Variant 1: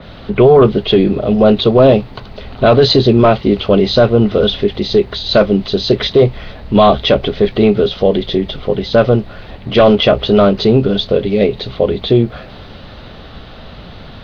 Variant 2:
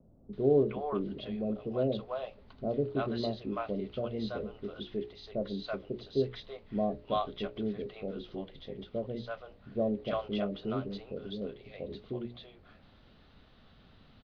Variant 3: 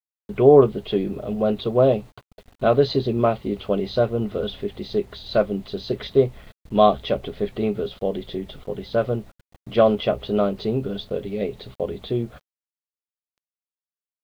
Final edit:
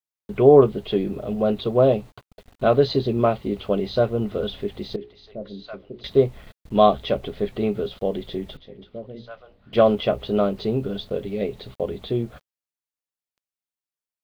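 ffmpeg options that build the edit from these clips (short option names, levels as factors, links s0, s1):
-filter_complex "[1:a]asplit=2[s0][s1];[2:a]asplit=3[s2][s3][s4];[s2]atrim=end=4.962[s5];[s0]atrim=start=4.958:end=6.042[s6];[s3]atrim=start=6.038:end=8.572[s7];[s1]atrim=start=8.568:end=9.732[s8];[s4]atrim=start=9.728[s9];[s5][s6]acrossfade=d=0.004:c1=hsin:c2=hsin[s10];[s10][s7]acrossfade=d=0.004:c1=hsin:c2=hsin[s11];[s11][s8]acrossfade=d=0.004:c1=hsin:c2=hsin[s12];[s12][s9]acrossfade=d=0.004:c1=hsin:c2=hsin"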